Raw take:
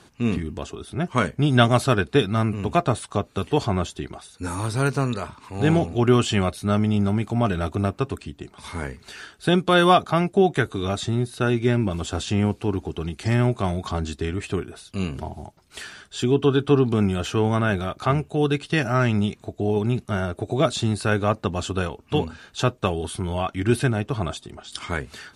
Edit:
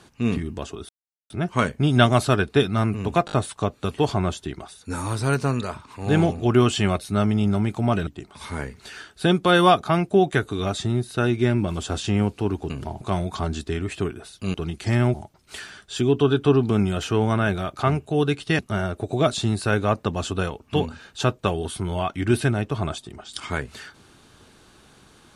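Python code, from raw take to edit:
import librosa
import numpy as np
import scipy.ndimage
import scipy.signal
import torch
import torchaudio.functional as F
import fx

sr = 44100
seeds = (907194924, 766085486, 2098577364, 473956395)

y = fx.edit(x, sr, fx.insert_silence(at_s=0.89, length_s=0.41),
    fx.stutter(start_s=2.85, slice_s=0.02, count=4),
    fx.cut(start_s=7.6, length_s=0.7),
    fx.swap(start_s=12.93, length_s=0.6, other_s=15.06, other_length_s=0.31),
    fx.cut(start_s=18.82, length_s=1.16), tone=tone)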